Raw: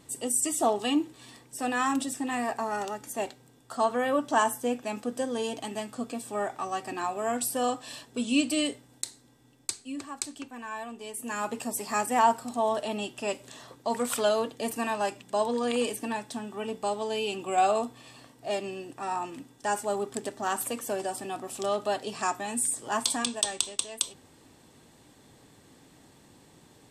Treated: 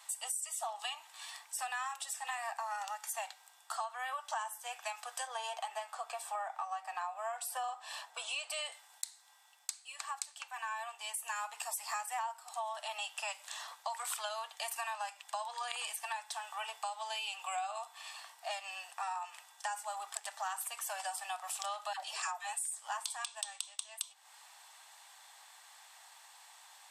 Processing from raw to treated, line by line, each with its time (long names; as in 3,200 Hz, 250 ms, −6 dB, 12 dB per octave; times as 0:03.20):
0:05.27–0:08.72: tilt shelving filter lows +7 dB, about 1,500 Hz
0:21.93–0:22.53: all-pass dispersion lows, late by 149 ms, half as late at 500 Hz
whole clip: Butterworth high-pass 740 Hz 48 dB per octave; downward compressor 10 to 1, threshold −40 dBFS; level +4 dB